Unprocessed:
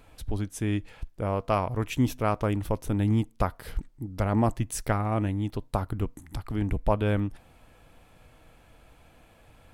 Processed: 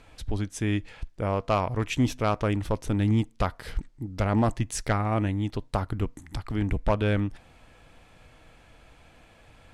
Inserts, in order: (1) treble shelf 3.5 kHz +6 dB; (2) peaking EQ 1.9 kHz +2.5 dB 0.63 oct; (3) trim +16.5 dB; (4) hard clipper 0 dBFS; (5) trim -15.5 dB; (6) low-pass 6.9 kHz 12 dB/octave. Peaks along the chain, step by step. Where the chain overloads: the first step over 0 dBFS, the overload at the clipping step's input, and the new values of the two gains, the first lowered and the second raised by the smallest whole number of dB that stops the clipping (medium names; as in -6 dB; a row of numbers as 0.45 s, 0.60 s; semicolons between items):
-10.0 dBFS, -10.0 dBFS, +6.5 dBFS, 0.0 dBFS, -15.5 dBFS, -15.0 dBFS; step 3, 6.5 dB; step 3 +9.5 dB, step 5 -8.5 dB